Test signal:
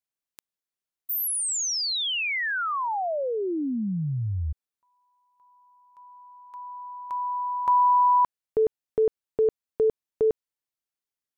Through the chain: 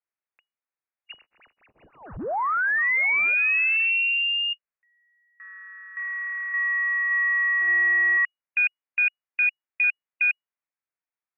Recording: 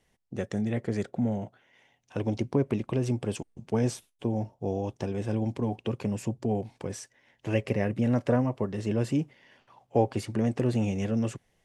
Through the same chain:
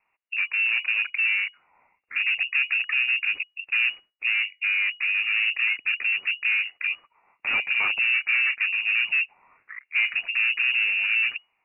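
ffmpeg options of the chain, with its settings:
-filter_complex "[0:a]asplit=2[s0][s1];[s1]highpass=f=720:p=1,volume=35.5,asoftclip=type=tanh:threshold=0.251[s2];[s0][s2]amix=inputs=2:normalize=0,lowpass=f=1600:p=1,volume=0.501,afwtdn=0.0447,lowpass=f=2500:t=q:w=0.5098,lowpass=f=2500:t=q:w=0.6013,lowpass=f=2500:t=q:w=0.9,lowpass=f=2500:t=q:w=2.563,afreqshift=-2900,volume=0.708"

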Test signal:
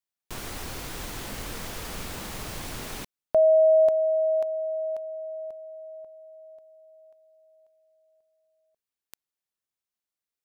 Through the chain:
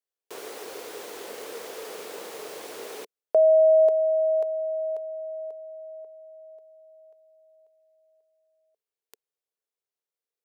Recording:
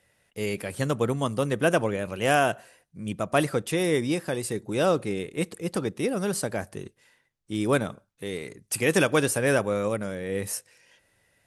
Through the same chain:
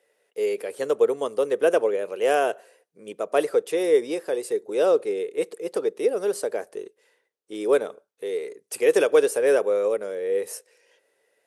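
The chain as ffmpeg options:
-af "highpass=f=440:t=q:w=4.9,volume=0.596"

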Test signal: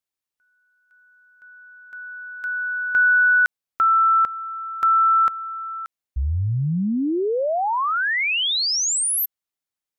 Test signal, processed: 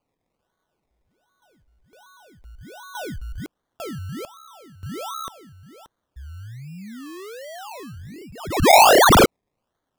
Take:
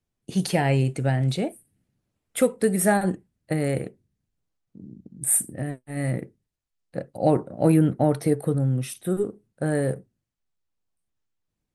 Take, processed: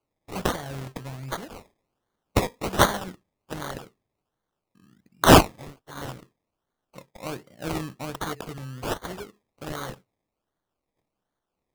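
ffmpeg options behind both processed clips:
-af "crystalizer=i=2.5:c=0,highshelf=f=3700:t=q:w=3:g=11.5,acrusher=samples=24:mix=1:aa=0.000001:lfo=1:lforange=14.4:lforate=1.3,volume=0.178"

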